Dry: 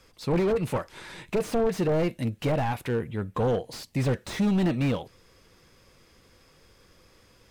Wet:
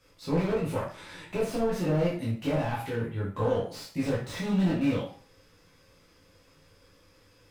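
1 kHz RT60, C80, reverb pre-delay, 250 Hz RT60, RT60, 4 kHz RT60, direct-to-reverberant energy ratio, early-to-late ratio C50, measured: 0.45 s, 9.5 dB, 11 ms, 0.45 s, 0.45 s, 0.40 s, −7.0 dB, 4.5 dB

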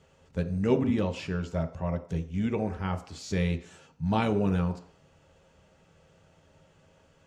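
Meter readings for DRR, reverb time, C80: 6.5 dB, 0.55 s, 16.5 dB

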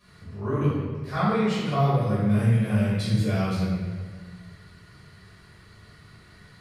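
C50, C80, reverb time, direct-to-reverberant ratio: −2.0 dB, 1.0 dB, 1.6 s, −12.5 dB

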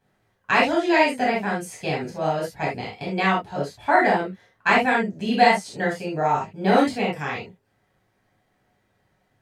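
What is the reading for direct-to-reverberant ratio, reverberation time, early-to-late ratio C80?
−5.0 dB, non-exponential decay, 15.0 dB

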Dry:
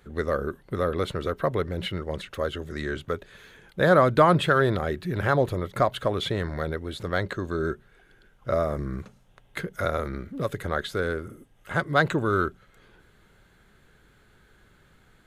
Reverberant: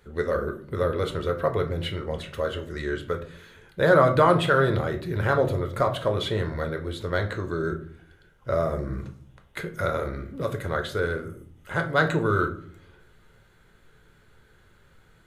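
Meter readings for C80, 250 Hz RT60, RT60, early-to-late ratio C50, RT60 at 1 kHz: 16.5 dB, 0.80 s, 0.55 s, 12.5 dB, 0.50 s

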